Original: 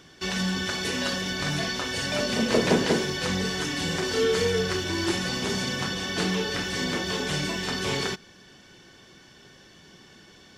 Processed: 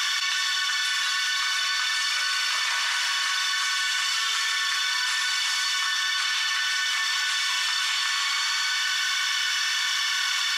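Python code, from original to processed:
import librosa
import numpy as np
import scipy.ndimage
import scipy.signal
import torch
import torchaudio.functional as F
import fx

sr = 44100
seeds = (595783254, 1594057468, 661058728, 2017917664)

y = scipy.signal.sosfilt(scipy.signal.ellip(4, 1.0, 80, 1100.0, 'highpass', fs=sr, output='sos'), x)
y = fx.echo_feedback(y, sr, ms=102, feedback_pct=55, wet_db=-8.5)
y = fx.rev_gated(y, sr, seeds[0], gate_ms=430, shape='flat', drr_db=1.5)
y = fx.env_flatten(y, sr, amount_pct=100)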